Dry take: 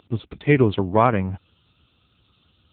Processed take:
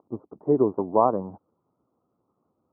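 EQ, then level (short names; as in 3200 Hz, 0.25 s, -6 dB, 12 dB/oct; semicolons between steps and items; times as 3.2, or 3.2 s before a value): HPF 300 Hz 12 dB/oct; steep low-pass 1100 Hz 48 dB/oct; air absorption 320 m; 0.0 dB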